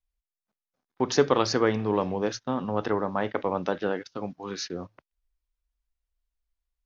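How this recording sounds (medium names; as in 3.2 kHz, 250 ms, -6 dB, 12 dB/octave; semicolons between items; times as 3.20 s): noise floor -92 dBFS; spectral tilt -5.0 dB/octave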